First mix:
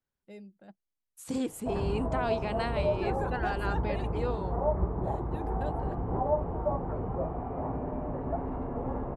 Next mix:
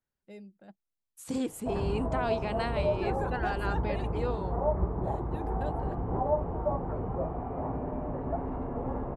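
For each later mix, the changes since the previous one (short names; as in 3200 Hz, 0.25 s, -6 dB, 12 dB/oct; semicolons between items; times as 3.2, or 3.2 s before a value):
none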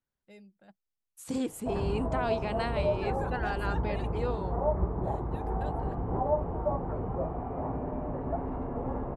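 first voice: add bell 310 Hz -7 dB 2.5 oct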